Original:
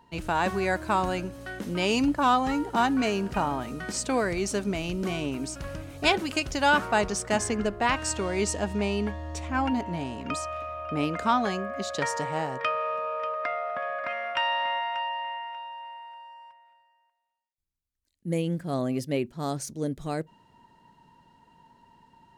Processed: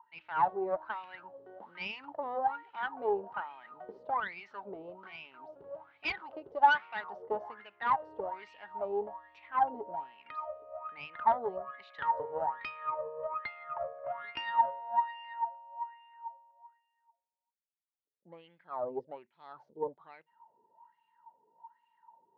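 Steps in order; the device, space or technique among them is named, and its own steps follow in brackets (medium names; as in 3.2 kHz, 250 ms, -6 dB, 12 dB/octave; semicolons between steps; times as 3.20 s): wah-wah guitar rig (wah-wah 1.2 Hz 420–2500 Hz, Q 8.3; valve stage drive 26 dB, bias 0.7; cabinet simulation 89–3800 Hz, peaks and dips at 270 Hz -4 dB, 890 Hz +10 dB, 1.7 kHz -3 dB, 2.4 kHz -8 dB); trim +6 dB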